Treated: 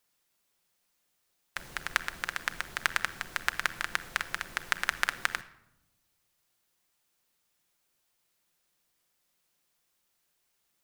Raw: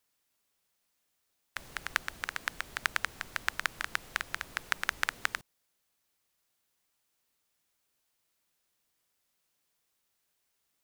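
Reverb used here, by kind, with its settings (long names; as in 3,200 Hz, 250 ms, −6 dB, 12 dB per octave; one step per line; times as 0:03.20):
rectangular room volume 3,300 cubic metres, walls furnished, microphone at 0.89 metres
level +2 dB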